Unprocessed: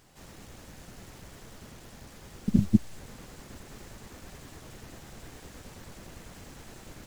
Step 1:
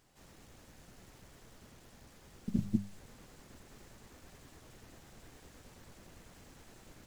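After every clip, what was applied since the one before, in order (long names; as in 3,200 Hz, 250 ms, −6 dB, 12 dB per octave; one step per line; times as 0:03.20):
mains-hum notches 50/100/150/200 Hz
level −9 dB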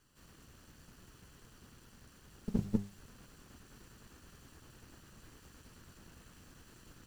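lower of the sound and its delayed copy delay 0.69 ms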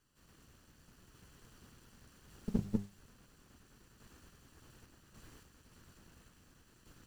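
sample-and-hold tremolo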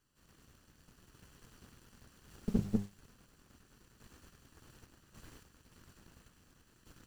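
leveller curve on the samples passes 1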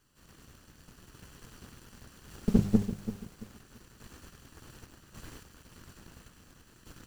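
feedback echo at a low word length 337 ms, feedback 35%, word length 9 bits, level −12 dB
level +8 dB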